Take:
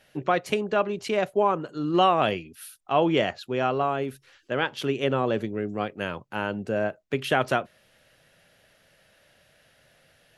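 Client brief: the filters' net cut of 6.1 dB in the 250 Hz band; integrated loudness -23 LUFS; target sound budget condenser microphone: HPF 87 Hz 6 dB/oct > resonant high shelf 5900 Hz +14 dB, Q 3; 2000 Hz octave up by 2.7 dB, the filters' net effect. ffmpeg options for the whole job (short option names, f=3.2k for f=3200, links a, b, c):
-af "highpass=f=87:p=1,equalizer=f=250:t=o:g=-8.5,equalizer=f=2k:t=o:g=6,highshelf=f=5.9k:t=q:w=3:g=14,volume=3.5dB"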